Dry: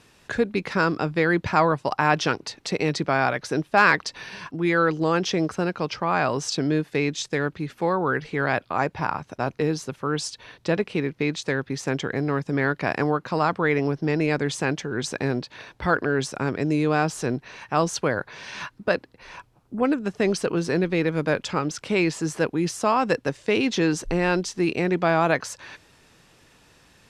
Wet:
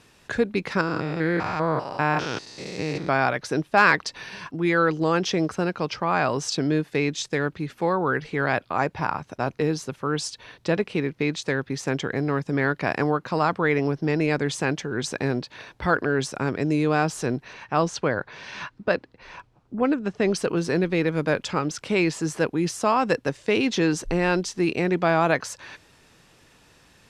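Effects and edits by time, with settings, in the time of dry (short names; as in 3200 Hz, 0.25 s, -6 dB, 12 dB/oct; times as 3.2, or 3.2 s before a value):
0.81–3.09 stepped spectrum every 0.2 s
17.53–20.35 air absorption 68 m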